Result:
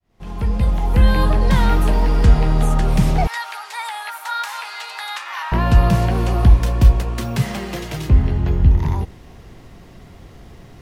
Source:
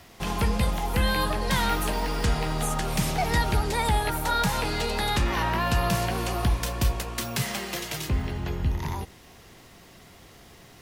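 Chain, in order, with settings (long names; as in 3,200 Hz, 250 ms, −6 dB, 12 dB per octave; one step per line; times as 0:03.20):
fade in at the beginning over 1.18 s
spectral tilt −2.5 dB per octave
0:03.27–0:05.52: high-pass filter 1,000 Hz 24 dB per octave
level +4 dB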